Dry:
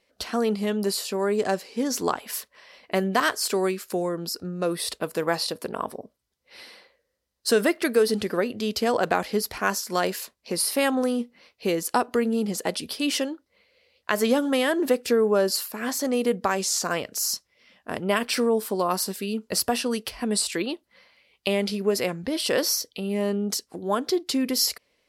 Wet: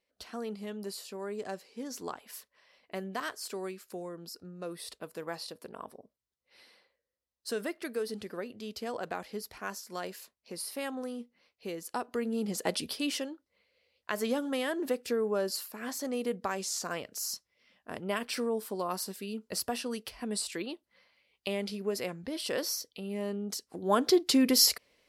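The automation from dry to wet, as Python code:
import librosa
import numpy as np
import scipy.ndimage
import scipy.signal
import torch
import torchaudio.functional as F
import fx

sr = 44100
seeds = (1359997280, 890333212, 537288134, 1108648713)

y = fx.gain(x, sr, db=fx.line((11.84, -14.0), (12.81, -2.5), (13.2, -9.5), (23.57, -9.5), (24.01, 0.5)))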